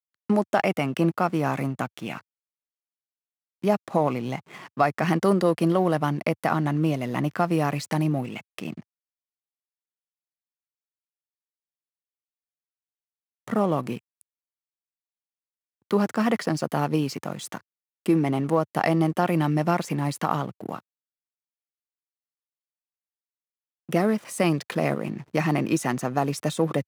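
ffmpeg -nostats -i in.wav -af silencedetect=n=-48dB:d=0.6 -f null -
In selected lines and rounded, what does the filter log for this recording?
silence_start: 2.21
silence_end: 3.63 | silence_duration: 1.42
silence_start: 8.81
silence_end: 13.48 | silence_duration: 4.67
silence_start: 14.21
silence_end: 15.91 | silence_duration: 1.69
silence_start: 20.80
silence_end: 23.89 | silence_duration: 3.09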